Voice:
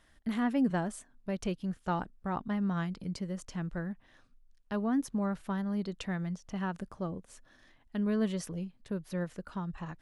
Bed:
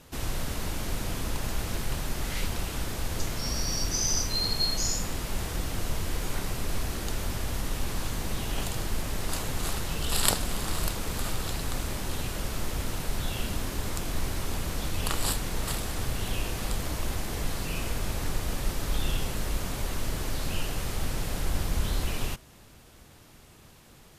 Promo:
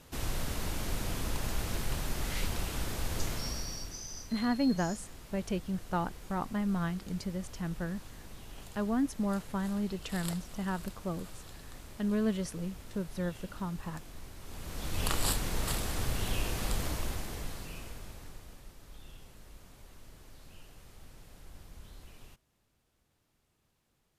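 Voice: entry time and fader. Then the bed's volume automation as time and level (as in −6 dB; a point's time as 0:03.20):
4.05 s, 0.0 dB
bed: 0:03.33 −3 dB
0:04.08 −17 dB
0:14.38 −17 dB
0:15.02 −2 dB
0:16.85 −2 dB
0:18.72 −22.5 dB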